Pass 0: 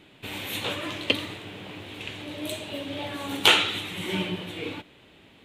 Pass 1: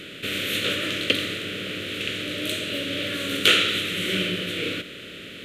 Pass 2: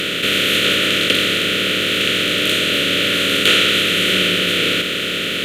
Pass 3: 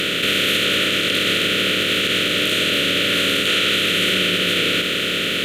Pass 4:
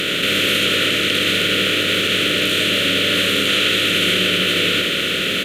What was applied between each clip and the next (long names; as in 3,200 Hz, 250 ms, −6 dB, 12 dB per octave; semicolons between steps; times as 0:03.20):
compressor on every frequency bin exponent 0.6; Chebyshev band-stop filter 550–1,400 Hz, order 2
compressor on every frequency bin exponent 0.4; leveller curve on the samples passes 1; level −1.5 dB
brickwall limiter −9.5 dBFS, peak gain reduction 8 dB
single-tap delay 80 ms −5 dB